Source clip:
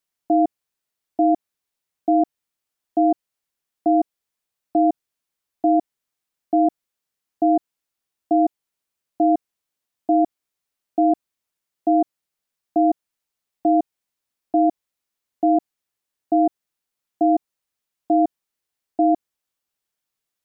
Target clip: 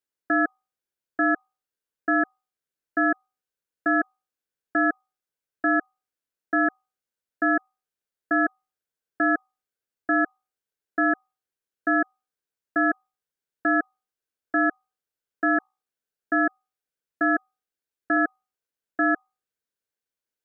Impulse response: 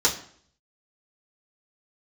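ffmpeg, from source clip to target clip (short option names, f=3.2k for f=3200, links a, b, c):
-filter_complex "[0:a]asettb=1/sr,asplit=3[a][b][c];[a]atrim=end=15.574[d];[b]atrim=start=15.57:end=18.17,asetpts=PTS-STARTPTS,afade=t=in:d=0.004:c=qsin,afade=t=out:st=2.596:d=0.004:c=qsin,highpass=130[e];[c]atrim=start=18.166[f];[d][e]acrossfade=d=0.004:c1=hsin:c2=qsin[g];[g][f]acrossfade=d=0.004:c1=qsin:c2=hsin,equalizer=f=540:w=1.9:g=11,bandreject=f=60:t=h:w=6,bandreject=f=120:t=h:w=6,bandreject=f=180:t=h:w=6,bandreject=f=240:t=h:w=6,aeval=exprs='val(0)*sin(2*PI*1000*n/s)':c=same,volume=-6dB"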